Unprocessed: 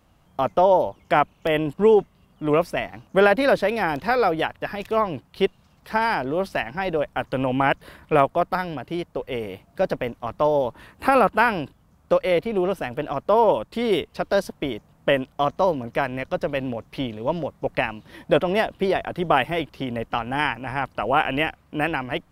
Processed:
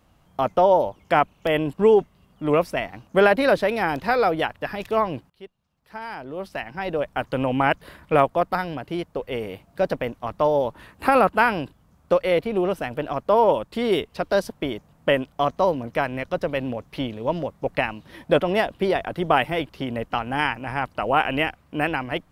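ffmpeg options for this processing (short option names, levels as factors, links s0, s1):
-filter_complex "[0:a]asplit=2[s0][s1];[s0]atrim=end=5.3,asetpts=PTS-STARTPTS,afade=t=out:st=5.296:d=0.004:c=hsin:silence=0.0841395[s2];[s1]atrim=start=5.3,asetpts=PTS-STARTPTS,afade=t=in:d=1.84:c=qua:silence=0.0841395[s3];[s2][s3]concat=n=2:v=0:a=1"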